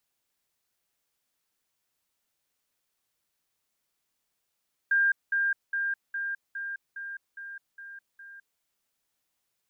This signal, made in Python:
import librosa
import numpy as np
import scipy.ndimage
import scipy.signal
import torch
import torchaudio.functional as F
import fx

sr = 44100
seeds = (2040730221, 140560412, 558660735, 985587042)

y = fx.level_ladder(sr, hz=1600.0, from_db=-20.0, step_db=-3.0, steps=9, dwell_s=0.21, gap_s=0.2)